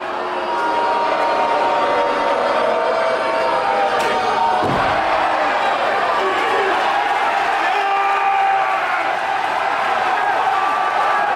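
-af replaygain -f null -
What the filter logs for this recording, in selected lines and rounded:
track_gain = +1.2 dB
track_peak = 0.369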